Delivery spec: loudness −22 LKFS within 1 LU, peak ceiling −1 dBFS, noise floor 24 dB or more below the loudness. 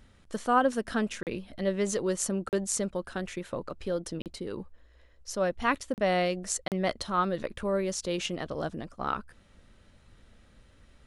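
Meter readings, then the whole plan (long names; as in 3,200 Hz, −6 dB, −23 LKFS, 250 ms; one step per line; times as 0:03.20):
number of dropouts 5; longest dropout 38 ms; integrated loudness −31.0 LKFS; sample peak −11.5 dBFS; target loudness −22.0 LKFS
→ repair the gap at 0:01.23/0:02.49/0:04.22/0:05.94/0:06.68, 38 ms
level +9 dB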